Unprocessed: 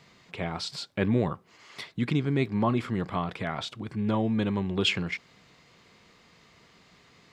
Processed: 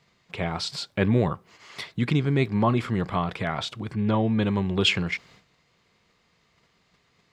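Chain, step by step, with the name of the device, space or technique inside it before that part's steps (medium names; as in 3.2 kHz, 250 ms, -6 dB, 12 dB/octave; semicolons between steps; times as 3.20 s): low shelf boost with a cut just above (bass shelf 72 Hz +4.5 dB; peaking EQ 270 Hz -3 dB 0.71 oct); 3.94–4.43 s: low-pass 5.1 kHz 12 dB/octave; gate -55 dBFS, range -12 dB; trim +4 dB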